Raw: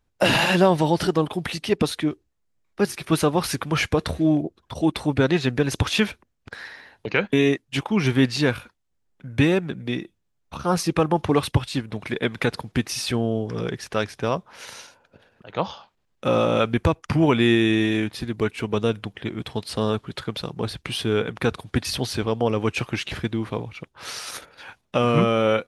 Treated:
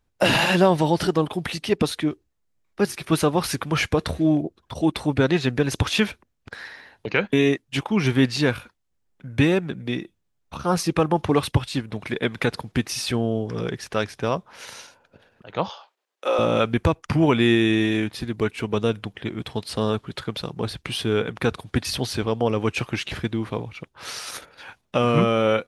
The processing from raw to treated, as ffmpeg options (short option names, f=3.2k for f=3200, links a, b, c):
-filter_complex "[0:a]asettb=1/sr,asplit=3[a][b][c];[a]atrim=end=15.694[d];[b]atrim=start=15.69:end=16.39,asetpts=PTS-STARTPTS,afade=t=in:d=0.004:c=qsin,afade=t=out:st=0.696:d=0.004:c=qsin,highpass=f=400:w=0.5412,highpass=f=400:w=1.3066[e];[c]atrim=start=16.386[f];[d][e]acrossfade=d=0.004:c1=hsin:c2=qsin[g];[g][f]acrossfade=d=0.004:c1=qsin:c2=hsin"